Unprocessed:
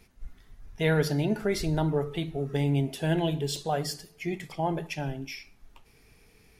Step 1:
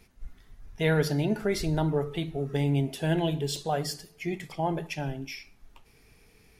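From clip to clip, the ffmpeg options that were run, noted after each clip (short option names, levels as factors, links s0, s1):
-af anull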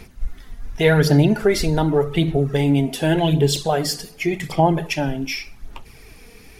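-filter_complex "[0:a]asplit=2[s0][s1];[s1]acompressor=threshold=0.0158:ratio=6,volume=1.12[s2];[s0][s2]amix=inputs=2:normalize=0,aphaser=in_gain=1:out_gain=1:delay=4.3:decay=0.43:speed=0.87:type=sinusoidal,volume=2.11"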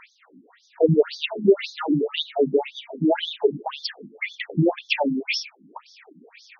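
-af "afftfilt=real='re*between(b*sr/1024,230*pow(4800/230,0.5+0.5*sin(2*PI*1.9*pts/sr))/1.41,230*pow(4800/230,0.5+0.5*sin(2*PI*1.9*pts/sr))*1.41)':imag='im*between(b*sr/1024,230*pow(4800/230,0.5+0.5*sin(2*PI*1.9*pts/sr))/1.41,230*pow(4800/230,0.5+0.5*sin(2*PI*1.9*pts/sr))*1.41)':win_size=1024:overlap=0.75,volume=1.88"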